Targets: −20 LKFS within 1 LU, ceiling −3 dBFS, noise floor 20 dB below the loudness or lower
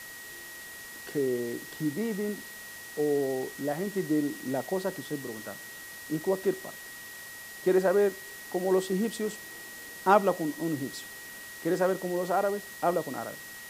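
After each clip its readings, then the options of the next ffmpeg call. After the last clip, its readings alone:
interfering tone 1,900 Hz; level of the tone −44 dBFS; background noise floor −44 dBFS; target noise floor −50 dBFS; integrated loudness −30.0 LKFS; sample peak −8.5 dBFS; target loudness −20.0 LKFS
→ -af "bandreject=frequency=1900:width=30"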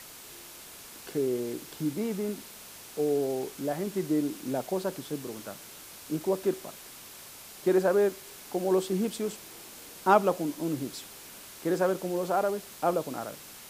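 interfering tone none found; background noise floor −47 dBFS; target noise floor −50 dBFS
→ -af "afftdn=noise_reduction=6:noise_floor=-47"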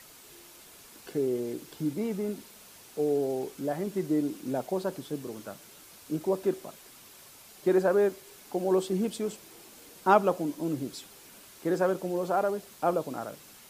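background noise floor −52 dBFS; integrated loudness −30.0 LKFS; sample peak −8.5 dBFS; target loudness −20.0 LKFS
→ -af "volume=10dB,alimiter=limit=-3dB:level=0:latency=1"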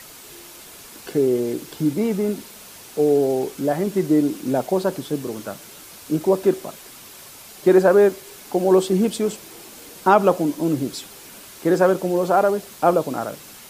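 integrated loudness −20.5 LKFS; sample peak −3.0 dBFS; background noise floor −42 dBFS

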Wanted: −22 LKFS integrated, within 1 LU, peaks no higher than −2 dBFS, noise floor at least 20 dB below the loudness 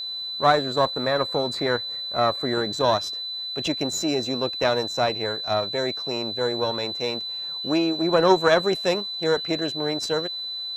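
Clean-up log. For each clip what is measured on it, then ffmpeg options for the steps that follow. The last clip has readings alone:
interfering tone 4,000 Hz; level of the tone −29 dBFS; integrated loudness −23.5 LKFS; sample peak −3.0 dBFS; target loudness −22.0 LKFS
→ -af "bandreject=frequency=4000:width=30"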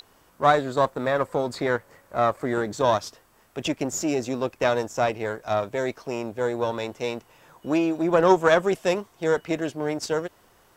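interfering tone none found; integrated loudness −25.0 LKFS; sample peak −3.0 dBFS; target loudness −22.0 LKFS
→ -af "volume=3dB,alimiter=limit=-2dB:level=0:latency=1"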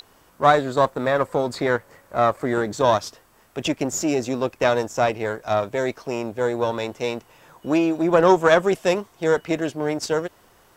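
integrated loudness −22.0 LKFS; sample peak −2.0 dBFS; background noise floor −56 dBFS

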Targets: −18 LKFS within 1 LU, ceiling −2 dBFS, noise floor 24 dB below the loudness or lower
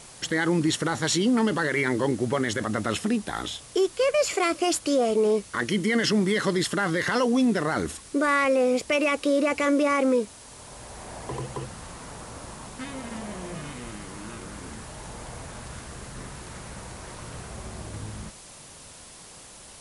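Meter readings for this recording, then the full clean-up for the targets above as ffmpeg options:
background noise floor −47 dBFS; target noise floor −49 dBFS; integrated loudness −24.5 LKFS; sample peak −13.5 dBFS; target loudness −18.0 LKFS
→ -af "afftdn=noise_reduction=6:noise_floor=-47"
-af "volume=6.5dB"

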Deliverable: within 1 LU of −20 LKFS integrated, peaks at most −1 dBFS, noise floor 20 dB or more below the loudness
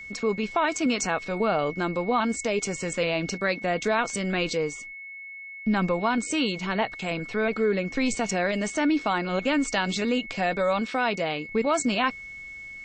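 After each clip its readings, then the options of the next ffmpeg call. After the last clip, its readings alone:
interfering tone 2,200 Hz; level of the tone −38 dBFS; integrated loudness −26.0 LKFS; sample peak −11.5 dBFS; target loudness −20.0 LKFS
→ -af "bandreject=frequency=2200:width=30"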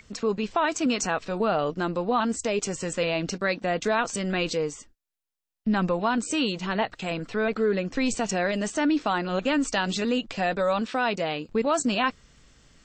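interfering tone none found; integrated loudness −26.5 LKFS; sample peak −11.5 dBFS; target loudness −20.0 LKFS
→ -af "volume=6.5dB"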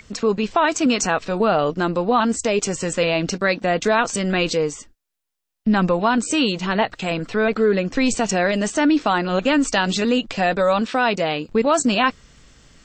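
integrated loudness −20.0 LKFS; sample peak −5.0 dBFS; background noise floor −80 dBFS

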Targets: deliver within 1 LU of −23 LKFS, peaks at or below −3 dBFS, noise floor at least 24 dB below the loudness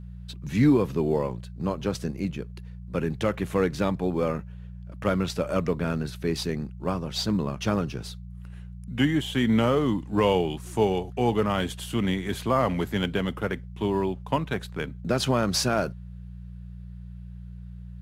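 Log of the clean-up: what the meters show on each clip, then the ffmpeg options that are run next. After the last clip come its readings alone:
mains hum 60 Hz; hum harmonics up to 180 Hz; level of the hum −37 dBFS; integrated loudness −26.5 LKFS; sample peak −11.0 dBFS; target loudness −23.0 LKFS
→ -af "bandreject=frequency=60:width_type=h:width=4,bandreject=frequency=120:width_type=h:width=4,bandreject=frequency=180:width_type=h:width=4"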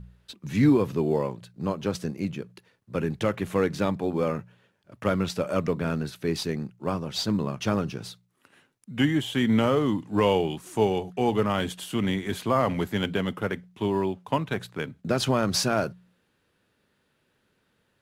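mains hum none found; integrated loudness −27.0 LKFS; sample peak −10.5 dBFS; target loudness −23.0 LKFS
→ -af "volume=4dB"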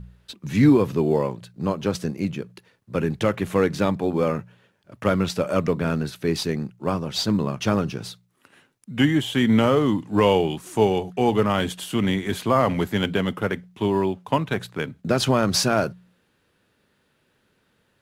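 integrated loudness −23.0 LKFS; sample peak −6.5 dBFS; background noise floor −67 dBFS

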